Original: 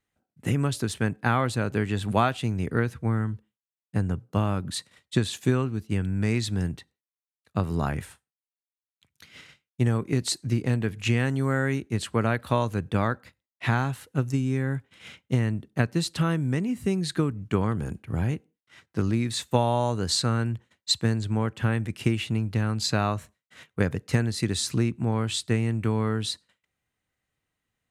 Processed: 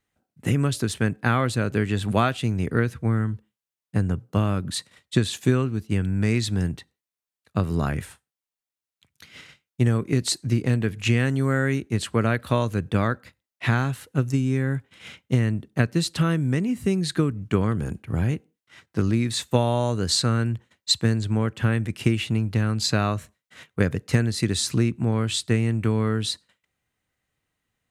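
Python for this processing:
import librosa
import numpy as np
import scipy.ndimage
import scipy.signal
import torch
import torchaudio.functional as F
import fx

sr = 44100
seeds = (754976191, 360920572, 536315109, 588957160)

y = fx.dynamic_eq(x, sr, hz=860.0, q=2.4, threshold_db=-43.0, ratio=4.0, max_db=-6)
y = F.gain(torch.from_numpy(y), 3.0).numpy()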